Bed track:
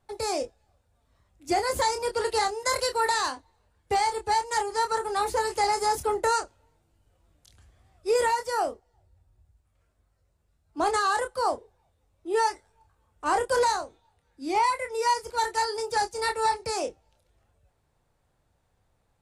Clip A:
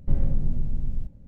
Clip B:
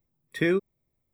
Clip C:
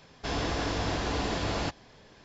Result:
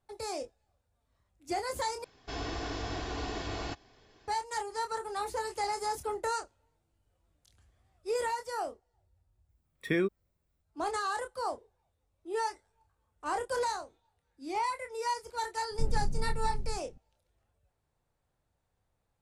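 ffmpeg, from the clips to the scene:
-filter_complex "[0:a]volume=-8.5dB[a];[3:a]aecho=1:1:2.7:0.47[b];[a]asplit=2[c][d];[c]atrim=end=2.044[e];[b]atrim=end=2.24,asetpts=PTS-STARTPTS,volume=-7.5dB[f];[d]atrim=start=4.276[g];[2:a]atrim=end=1.13,asetpts=PTS-STARTPTS,volume=-5dB,afade=t=in:d=0.004:c=hsin,afade=t=out:st=1.126:d=0.004:c=hsin,adelay=9490[h];[1:a]atrim=end=1.27,asetpts=PTS-STARTPTS,volume=-8dB,afade=t=in:d=0.004:c=hsin,afade=t=out:st=1.266:d=0.004:c=hsin,adelay=15710[i];[e][f]acrossfade=d=0.004:c1=hsin:c2=hsin[j];[j][g]acrossfade=d=0.004:c1=hsin:c2=hsin[k];[k][h][i]amix=inputs=3:normalize=0"

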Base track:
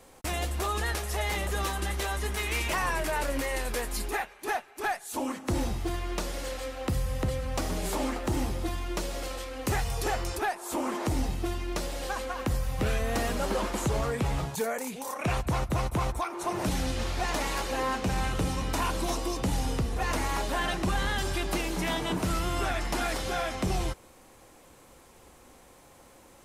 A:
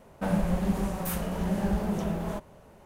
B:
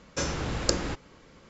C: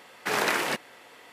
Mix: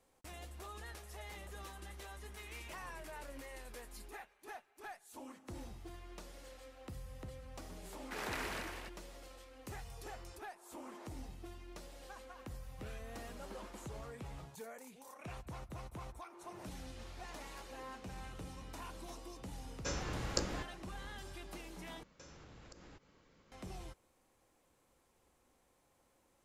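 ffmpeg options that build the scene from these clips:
-filter_complex "[2:a]asplit=2[a][b];[0:a]volume=-19dB[c];[3:a]aecho=1:1:96.21|195.3|282.8:0.282|0.398|0.501[d];[a]asplit=2[e][f];[f]adelay=16,volume=-11dB[g];[e][g]amix=inputs=2:normalize=0[h];[b]acompressor=threshold=-40dB:ratio=6:attack=3.2:release=140:knee=1:detection=peak[i];[c]asplit=2[j][k];[j]atrim=end=22.034[l];[i]atrim=end=1.49,asetpts=PTS-STARTPTS,volume=-13.5dB[m];[k]atrim=start=23.516[n];[d]atrim=end=1.32,asetpts=PTS-STARTPTS,volume=-16.5dB,afade=t=in:d=0.004:c=hsin,afade=t=out:st=1.316:d=0.004:c=hsin,adelay=7850[o];[h]atrim=end=1.49,asetpts=PTS-STARTPTS,volume=-10dB,afade=t=in:d=0.004:c=hsin,afade=t=out:st=1.486:d=0.004:c=hsin,adelay=19680[p];[l][m]acrossfade=d=0.004:c1=hsin:c2=hsin[q];[q][n]acrossfade=d=0.004:c1=hsin:c2=hsin[r];[r][o][p]amix=inputs=3:normalize=0"

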